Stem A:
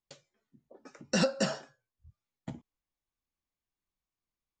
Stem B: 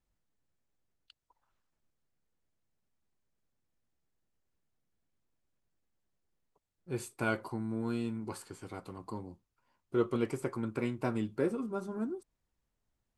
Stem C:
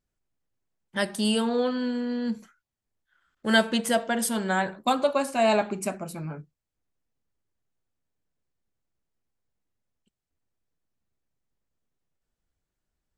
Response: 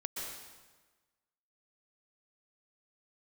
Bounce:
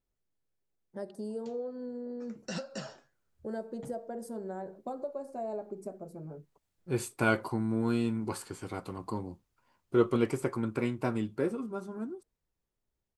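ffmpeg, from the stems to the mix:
-filter_complex "[0:a]alimiter=limit=-20.5dB:level=0:latency=1:release=183,flanger=delay=2.6:depth=9.8:regen=76:speed=1.5:shape=triangular,adelay=1350,volume=-2.5dB[link_01];[1:a]dynaudnorm=framelen=520:gausssize=11:maxgain=11dB,volume=-5.5dB,asplit=2[link_02][link_03];[2:a]firequalizer=gain_entry='entry(270,0);entry(400,9);entry(1000,-7);entry(3100,-29);entry(4600,-12)':delay=0.05:min_phase=1,acompressor=threshold=-28dB:ratio=2.5,volume=-0.5dB[link_04];[link_03]apad=whole_len=585349[link_05];[link_04][link_05]sidechaingate=range=-9dB:threshold=-54dB:ratio=16:detection=peak[link_06];[link_01][link_02][link_06]amix=inputs=3:normalize=0"

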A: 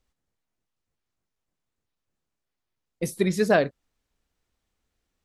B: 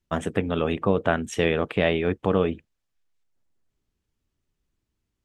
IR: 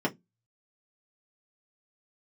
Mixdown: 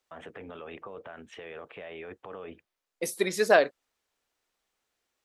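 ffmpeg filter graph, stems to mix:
-filter_complex "[0:a]highpass=450,volume=1.5dB[link_01];[1:a]acrossover=split=440 3300:gain=0.178 1 0.0631[link_02][link_03][link_04];[link_02][link_03][link_04]amix=inputs=3:normalize=0,acompressor=threshold=-25dB:ratio=6,alimiter=level_in=5.5dB:limit=-24dB:level=0:latency=1:release=24,volume=-5.5dB,volume=-4dB[link_05];[link_01][link_05]amix=inputs=2:normalize=0"

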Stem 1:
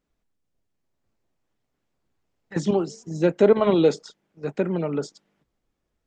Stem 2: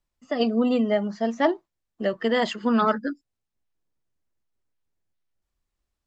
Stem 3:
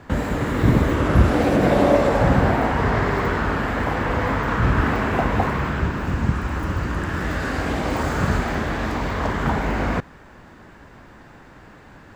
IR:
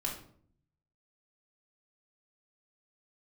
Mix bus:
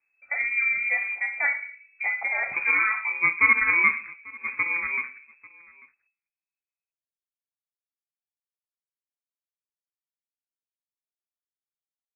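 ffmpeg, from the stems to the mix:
-filter_complex "[0:a]acrusher=samples=23:mix=1:aa=0.000001,volume=-5.5dB,asplit=3[link_01][link_02][link_03];[link_02]volume=-8.5dB[link_04];[link_03]volume=-20.5dB[link_05];[1:a]volume=-2dB,asplit=2[link_06][link_07];[link_07]volume=-8dB[link_08];[link_06]acompressor=threshold=-29dB:ratio=6,volume=0dB[link_09];[3:a]atrim=start_sample=2205[link_10];[link_04][link_08]amix=inputs=2:normalize=0[link_11];[link_11][link_10]afir=irnorm=-1:irlink=0[link_12];[link_05]aecho=0:1:843:1[link_13];[link_01][link_09][link_12][link_13]amix=inputs=4:normalize=0,lowpass=frequency=2200:width_type=q:width=0.5098,lowpass=frequency=2200:width_type=q:width=0.6013,lowpass=frequency=2200:width_type=q:width=0.9,lowpass=frequency=2200:width_type=q:width=2.563,afreqshift=-2600"

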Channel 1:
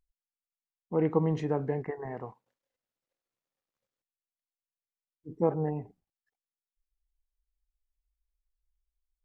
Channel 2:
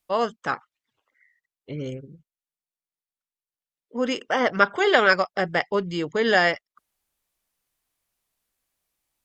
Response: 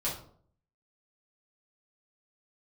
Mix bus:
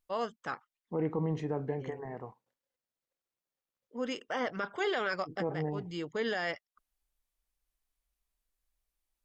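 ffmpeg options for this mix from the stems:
-filter_complex "[0:a]volume=-3.5dB,asplit=2[link_01][link_02];[1:a]volume=-10.5dB[link_03];[link_02]apad=whole_len=407534[link_04];[link_03][link_04]sidechaincompress=threshold=-42dB:ratio=8:attack=20:release=115[link_05];[link_01][link_05]amix=inputs=2:normalize=0,alimiter=limit=-23dB:level=0:latency=1:release=11"

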